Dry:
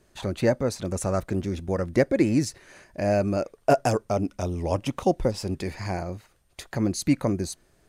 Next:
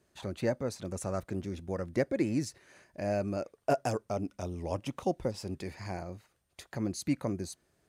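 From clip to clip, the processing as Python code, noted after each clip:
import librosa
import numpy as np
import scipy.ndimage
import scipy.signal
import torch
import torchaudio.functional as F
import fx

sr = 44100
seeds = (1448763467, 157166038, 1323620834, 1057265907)

y = scipy.signal.sosfilt(scipy.signal.butter(2, 64.0, 'highpass', fs=sr, output='sos'), x)
y = y * 10.0 ** (-8.5 / 20.0)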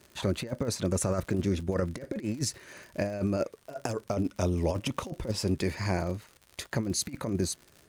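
y = fx.peak_eq(x, sr, hz=760.0, db=-7.0, octaves=0.25)
y = fx.over_compress(y, sr, threshold_db=-35.0, ratio=-0.5)
y = fx.dmg_crackle(y, sr, seeds[0], per_s=94.0, level_db=-46.0)
y = y * 10.0 ** (7.0 / 20.0)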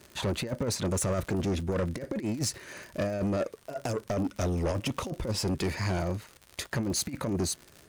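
y = 10.0 ** (-28.0 / 20.0) * np.tanh(x / 10.0 ** (-28.0 / 20.0))
y = y * 10.0 ** (4.0 / 20.0)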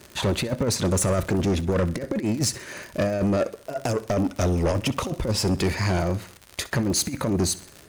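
y = fx.echo_feedback(x, sr, ms=65, feedback_pct=47, wet_db=-18.5)
y = y * 10.0 ** (6.5 / 20.0)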